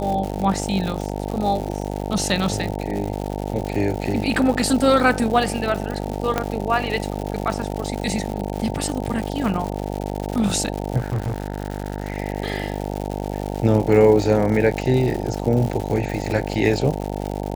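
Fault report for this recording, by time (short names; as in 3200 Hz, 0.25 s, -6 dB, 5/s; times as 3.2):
buzz 50 Hz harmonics 18 -27 dBFS
crackle 190/s -26 dBFS
6.38 pop -6 dBFS
10.97–12.18 clipped -19.5 dBFS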